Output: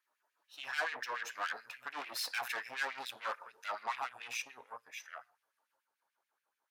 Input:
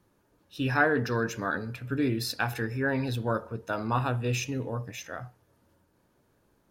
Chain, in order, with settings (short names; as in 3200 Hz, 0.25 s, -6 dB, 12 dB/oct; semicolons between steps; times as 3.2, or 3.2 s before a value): Doppler pass-by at 2.57, 11 m/s, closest 11 m; tube stage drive 35 dB, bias 0.65; LFO high-pass sine 6.9 Hz 750–2400 Hz; gain +1 dB